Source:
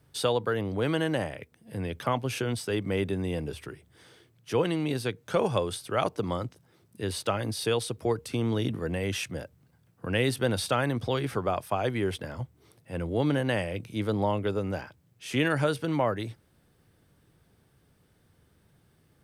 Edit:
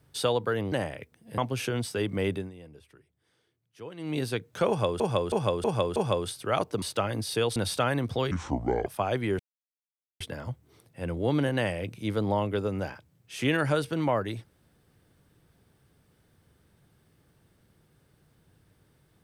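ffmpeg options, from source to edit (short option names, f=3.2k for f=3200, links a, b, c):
-filter_complex "[0:a]asplit=14[a][b][c][d][e][f][g][h][i][j][k][l][m][n];[a]atrim=end=0.722[o];[b]atrim=start=1.118:end=1.782[p];[c]atrim=start=2.108:end=3.25,asetpts=PTS-STARTPTS,afade=t=out:st=0.942:d=0.2:silence=0.149624[q];[d]atrim=start=3.25:end=4.7,asetpts=PTS-STARTPTS,volume=-16.5dB[r];[e]atrim=start=4.7:end=5.732,asetpts=PTS-STARTPTS,afade=t=in:d=0.2:silence=0.149624[s];[f]atrim=start=5.408:end=5.732[t];[g]atrim=start=5.408:end=5.732[u];[h]atrim=start=5.408:end=5.732[v];[i]atrim=start=5.408:end=6.272[w];[j]atrim=start=7.118:end=7.862[x];[k]atrim=start=10.478:end=11.234[y];[l]atrim=start=11.23:end=11.59,asetpts=PTS-STARTPTS,asetrate=28665,aresample=44100[z];[m]atrim=start=11.586:end=12.12,asetpts=PTS-STARTPTS,afade=t=out:st=0.53:d=0.004:c=hsin,apad=pad_dur=0.81[aa];[n]atrim=start=12.12,asetpts=PTS-STARTPTS,afade=t=in:d=0.004:c=hsin[ab];[o][p]acrossfade=d=0.004:c1=hsin:c2=hsin[ac];[q][r][s]concat=n=3:v=0:a=1[ad];[ac][ad]acrossfade=d=0.004:c1=hsin:c2=hsin[ae];[ae][t]acrossfade=d=0.004:c1=hsin:c2=hsin[af];[af][u]acrossfade=d=0.004:c1=hsin:c2=hsin[ag];[ag][v]acrossfade=d=0.004:c1=hsin:c2=hsin[ah];[ah][w]acrossfade=d=0.004:c1=hsin:c2=hsin[ai];[ai][x]acrossfade=d=0.004:c1=hsin:c2=hsin[aj];[aj][y]acrossfade=d=0.004:c1=hsin:c2=hsin[ak];[ak][z]acrossfade=d=0.004:c1=hsin:c2=hsin[al];[aa][ab]concat=n=2:v=0:a=1[am];[al][am]acrossfade=d=0.004:c1=hsin:c2=hsin"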